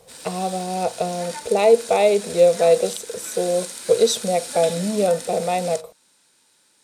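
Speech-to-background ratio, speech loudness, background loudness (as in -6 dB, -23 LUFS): 12.5 dB, -20.5 LUFS, -33.0 LUFS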